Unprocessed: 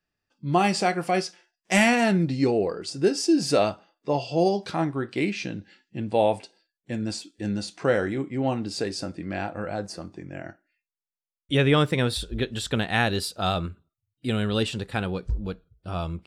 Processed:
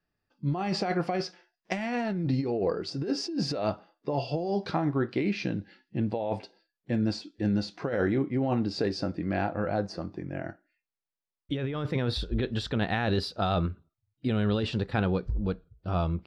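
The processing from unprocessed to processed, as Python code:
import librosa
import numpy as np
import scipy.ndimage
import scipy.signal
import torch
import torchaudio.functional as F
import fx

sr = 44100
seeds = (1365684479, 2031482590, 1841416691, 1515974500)

y = fx.air_absorb(x, sr, metres=320.0)
y = fx.over_compress(y, sr, threshold_db=-27.0, ratio=-1.0)
y = fx.high_shelf_res(y, sr, hz=3900.0, db=6.5, q=1.5)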